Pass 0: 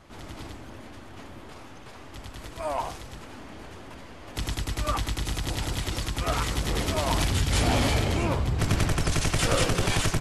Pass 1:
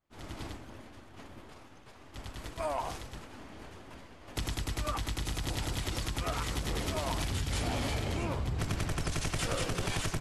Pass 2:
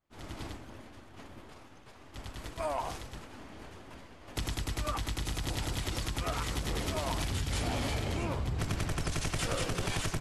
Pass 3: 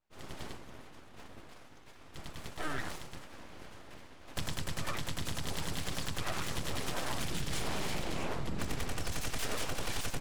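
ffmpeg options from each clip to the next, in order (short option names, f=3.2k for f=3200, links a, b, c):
-af "agate=range=-33dB:threshold=-36dB:ratio=3:detection=peak,acompressor=threshold=-30dB:ratio=6"
-af anull
-af "aeval=exprs='abs(val(0))':c=same"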